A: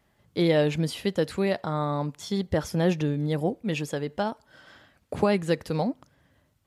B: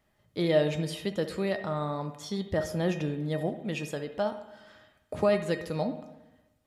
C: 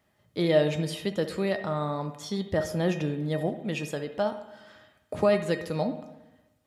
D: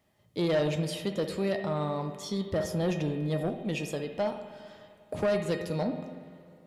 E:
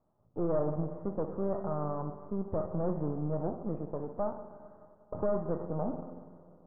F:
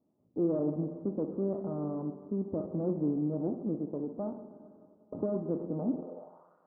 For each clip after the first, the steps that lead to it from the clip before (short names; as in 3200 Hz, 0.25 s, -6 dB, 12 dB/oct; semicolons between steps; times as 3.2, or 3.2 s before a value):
resonator 620 Hz, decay 0.28 s, mix 80%; reverb RT60 1.0 s, pre-delay 57 ms, DRR 10 dB; gain +8 dB
HPF 67 Hz; gain +2 dB
bell 1500 Hz -6 dB 0.65 oct; soft clip -21.5 dBFS, distortion -12 dB; spring tank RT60 2.9 s, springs 46/50 ms, chirp 35 ms, DRR 12 dB
half-wave gain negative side -12 dB; steep low-pass 1300 Hz 48 dB/oct
band-pass sweep 280 Hz -> 1500 Hz, 5.93–6.55; gain +8 dB